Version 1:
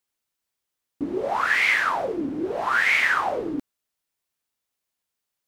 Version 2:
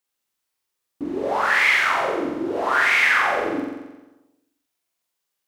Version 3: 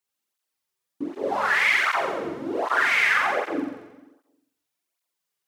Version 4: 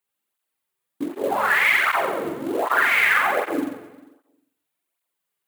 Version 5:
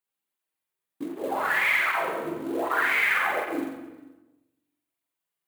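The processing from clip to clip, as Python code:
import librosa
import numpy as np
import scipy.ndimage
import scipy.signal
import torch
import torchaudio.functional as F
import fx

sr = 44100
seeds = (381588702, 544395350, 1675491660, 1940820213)

y1 = fx.low_shelf(x, sr, hz=170.0, db=-6.0)
y1 = fx.room_flutter(y1, sr, wall_m=7.6, rt60_s=1.1)
y2 = fx.flanger_cancel(y1, sr, hz=1.3, depth_ms=4.0)
y3 = fx.quant_float(y2, sr, bits=2)
y3 = scipy.signal.sosfilt(scipy.signal.butter(2, 79.0, 'highpass', fs=sr, output='sos'), y3)
y3 = fx.peak_eq(y3, sr, hz=5500.0, db=-9.5, octaves=0.78)
y3 = y3 * 10.0 ** (3.0 / 20.0)
y4 = fx.room_shoebox(y3, sr, seeds[0], volume_m3=210.0, walls='mixed', distance_m=0.63)
y4 = y4 * 10.0 ** (-7.0 / 20.0)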